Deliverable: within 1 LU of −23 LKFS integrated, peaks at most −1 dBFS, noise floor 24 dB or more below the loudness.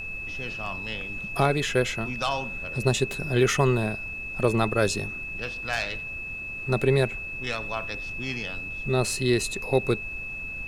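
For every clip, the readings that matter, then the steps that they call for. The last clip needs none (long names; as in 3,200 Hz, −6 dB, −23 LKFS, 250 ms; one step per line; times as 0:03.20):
interfering tone 2,600 Hz; level of the tone −33 dBFS; background noise floor −35 dBFS; target noise floor −51 dBFS; integrated loudness −27.0 LKFS; sample peak −8.0 dBFS; target loudness −23.0 LKFS
→ notch filter 2,600 Hz, Q 30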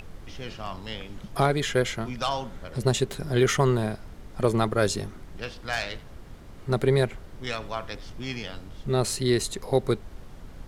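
interfering tone none found; background noise floor −45 dBFS; target noise floor −51 dBFS
→ noise reduction from a noise print 6 dB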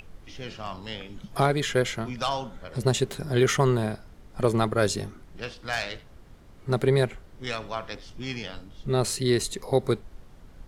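background noise floor −50 dBFS; target noise floor −51 dBFS
→ noise reduction from a noise print 6 dB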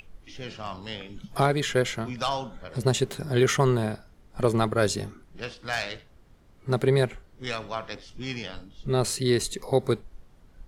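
background noise floor −55 dBFS; integrated loudness −27.0 LKFS; sample peak −8.0 dBFS; target loudness −23.0 LKFS
→ level +4 dB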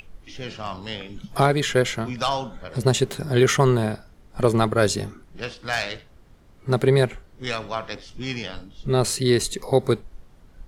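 integrated loudness −23.0 LKFS; sample peak −4.0 dBFS; background noise floor −51 dBFS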